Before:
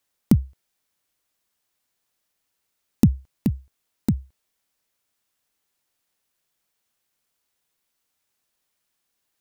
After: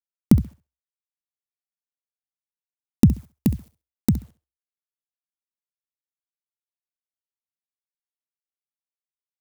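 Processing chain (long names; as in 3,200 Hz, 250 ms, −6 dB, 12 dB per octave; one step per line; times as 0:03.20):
bit reduction 10 bits
0:03.13–0:04.09: high-shelf EQ 5,700 Hz +8 dB
on a send: flutter between parallel walls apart 11.4 metres, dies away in 0.28 s
on the sum: level +2 dB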